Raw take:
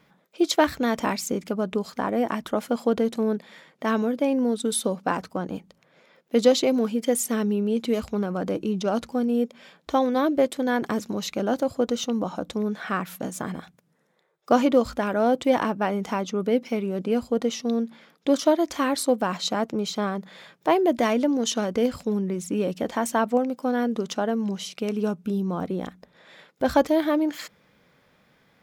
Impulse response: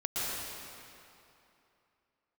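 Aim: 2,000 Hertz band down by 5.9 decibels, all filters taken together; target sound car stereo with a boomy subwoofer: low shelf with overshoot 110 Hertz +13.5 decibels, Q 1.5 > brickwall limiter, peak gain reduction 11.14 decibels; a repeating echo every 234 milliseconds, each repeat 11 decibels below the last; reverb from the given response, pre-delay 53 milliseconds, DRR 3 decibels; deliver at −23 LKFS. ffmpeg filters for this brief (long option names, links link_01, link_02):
-filter_complex "[0:a]equalizer=frequency=2000:width_type=o:gain=-8,aecho=1:1:234|468|702:0.282|0.0789|0.0221,asplit=2[link_01][link_02];[1:a]atrim=start_sample=2205,adelay=53[link_03];[link_02][link_03]afir=irnorm=-1:irlink=0,volume=-10.5dB[link_04];[link_01][link_04]amix=inputs=2:normalize=0,lowshelf=frequency=110:width_type=q:width=1.5:gain=13.5,volume=4.5dB,alimiter=limit=-13dB:level=0:latency=1"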